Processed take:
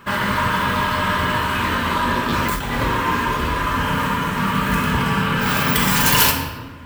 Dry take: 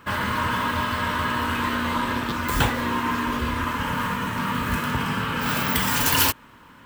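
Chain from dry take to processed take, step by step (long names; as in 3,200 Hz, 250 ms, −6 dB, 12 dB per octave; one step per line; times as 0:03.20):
rectangular room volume 990 cubic metres, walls mixed, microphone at 1.2 metres
0:02.30–0:02.83: compressor whose output falls as the input rises −25 dBFS, ratio −1
level +3.5 dB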